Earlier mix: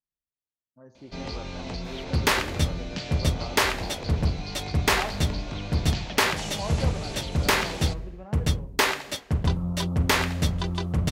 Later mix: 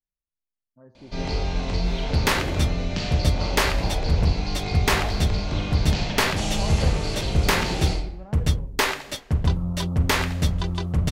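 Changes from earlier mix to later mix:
speech: add distance through air 260 m; first sound: send on; master: remove high-pass 82 Hz 6 dB/octave

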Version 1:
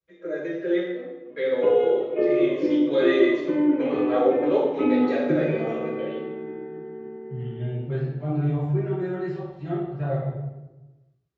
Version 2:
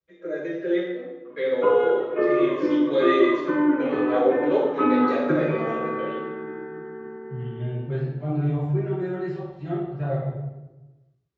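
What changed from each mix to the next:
background: add high-order bell 1.3 kHz +13.5 dB 1.1 oct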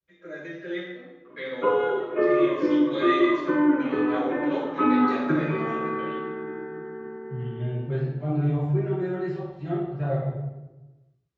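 first voice: add peaking EQ 450 Hz -12.5 dB 1.3 oct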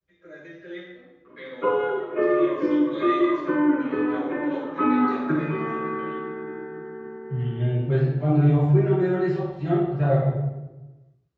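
first voice -5.5 dB; second voice +6.0 dB

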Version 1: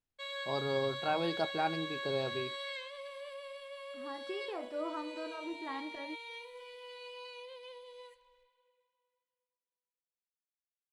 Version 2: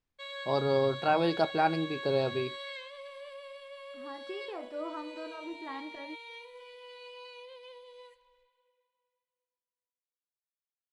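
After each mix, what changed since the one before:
first voice +6.5 dB; master: add treble shelf 10 kHz -8.5 dB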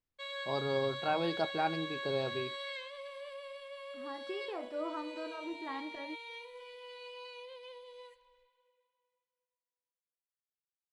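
first voice -6.0 dB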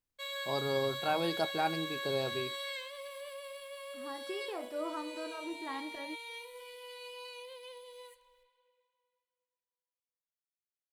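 master: remove distance through air 110 m

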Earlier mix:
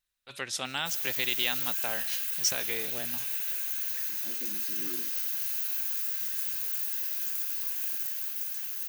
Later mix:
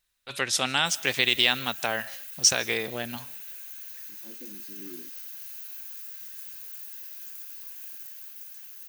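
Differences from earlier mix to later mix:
first voice +8.0 dB; background -9.0 dB

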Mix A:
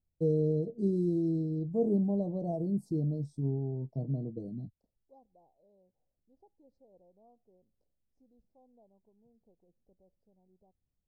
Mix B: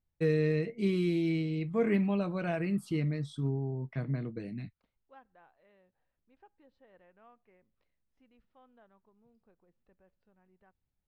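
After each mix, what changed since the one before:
first voice: add treble shelf 3 kHz +10 dB; master: remove inverse Chebyshev band-stop 1.3–3 kHz, stop band 50 dB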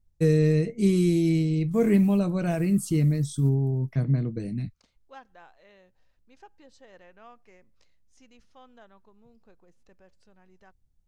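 first voice: add tilt EQ -3.5 dB/octave; second voice +7.5 dB; master: remove distance through air 420 m

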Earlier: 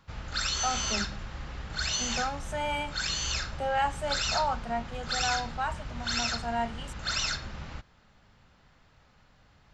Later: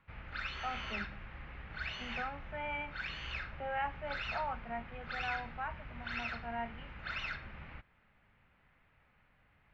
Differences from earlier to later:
speech: add distance through air 170 m; master: add four-pole ladder low-pass 2.7 kHz, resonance 50%

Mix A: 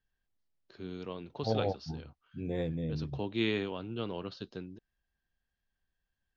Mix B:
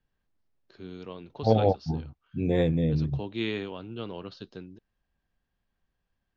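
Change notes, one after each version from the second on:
second voice +10.0 dB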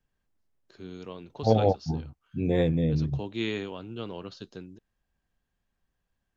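first voice: remove low-pass 5.2 kHz 24 dB/octave

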